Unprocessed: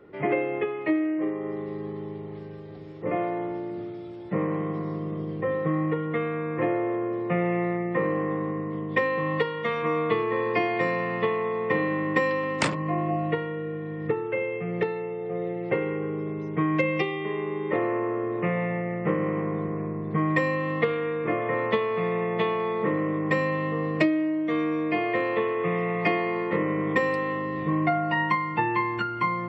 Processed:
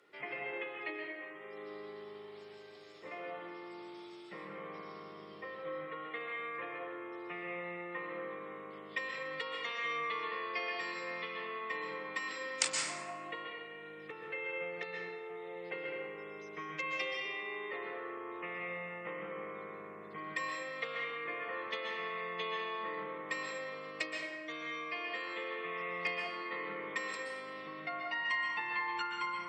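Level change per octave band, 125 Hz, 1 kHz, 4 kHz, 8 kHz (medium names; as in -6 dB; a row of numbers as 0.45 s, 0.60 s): -28.5 dB, -12.0 dB, -1.5 dB, +6.0 dB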